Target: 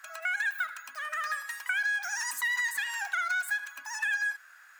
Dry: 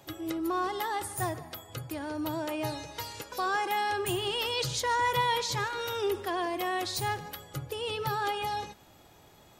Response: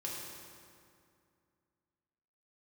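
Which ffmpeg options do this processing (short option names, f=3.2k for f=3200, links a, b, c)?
-af "aeval=exprs='0.0841*(abs(mod(val(0)/0.0841+3,4)-2)-1)':c=same,highpass=f=760:t=q:w=5.2,equalizer=f=1.7k:w=2.3:g=-3.5,asetrate=88200,aresample=44100,acompressor=threshold=-24dB:ratio=6,volume=-3dB"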